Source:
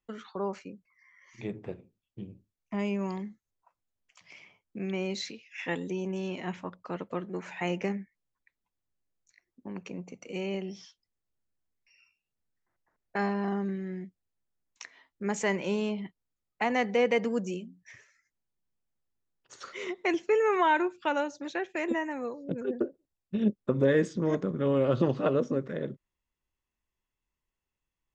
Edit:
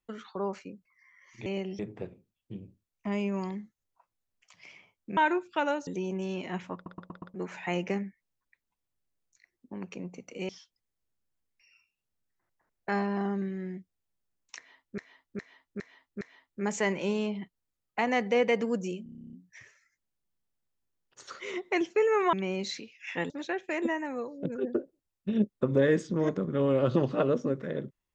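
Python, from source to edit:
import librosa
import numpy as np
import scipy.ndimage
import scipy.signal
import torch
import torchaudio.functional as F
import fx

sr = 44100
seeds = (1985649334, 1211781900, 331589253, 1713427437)

y = fx.edit(x, sr, fx.swap(start_s=4.84, length_s=0.97, other_s=20.66, other_length_s=0.7),
    fx.stutter_over(start_s=6.68, slice_s=0.12, count=5),
    fx.move(start_s=10.43, length_s=0.33, to_s=1.46),
    fx.repeat(start_s=14.84, length_s=0.41, count=5),
    fx.stutter(start_s=17.66, slice_s=0.03, count=11), tone=tone)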